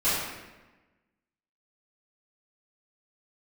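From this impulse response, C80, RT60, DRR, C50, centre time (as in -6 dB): 1.5 dB, 1.2 s, -14.0 dB, -1.0 dB, 88 ms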